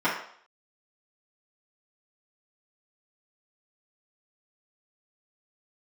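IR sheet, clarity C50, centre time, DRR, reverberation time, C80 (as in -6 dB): 4.5 dB, 36 ms, -11.0 dB, 0.60 s, 8.5 dB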